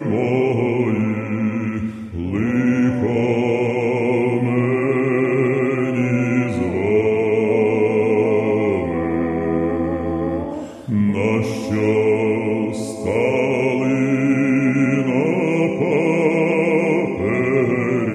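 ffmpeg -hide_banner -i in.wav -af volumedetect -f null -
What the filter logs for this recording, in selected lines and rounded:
mean_volume: -18.1 dB
max_volume: -4.7 dB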